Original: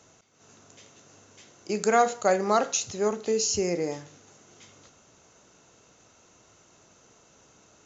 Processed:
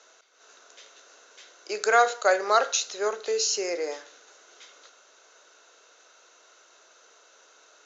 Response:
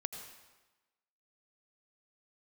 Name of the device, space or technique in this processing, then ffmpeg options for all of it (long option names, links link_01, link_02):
phone speaker on a table: -af "highpass=frequency=440:width=0.5412,highpass=frequency=440:width=1.3066,equalizer=frequency=820:width_type=q:width=4:gain=-4,equalizer=frequency=1500:width_type=q:width=4:gain=7,equalizer=frequency=3900:width_type=q:width=4:gain=6,lowpass=frequency=6800:width=0.5412,lowpass=frequency=6800:width=1.3066,volume=2dB"